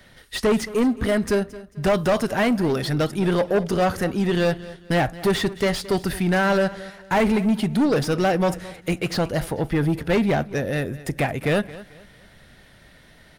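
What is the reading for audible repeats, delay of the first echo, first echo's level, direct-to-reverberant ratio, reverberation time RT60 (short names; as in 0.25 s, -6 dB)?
2, 0.221 s, -18.0 dB, none, none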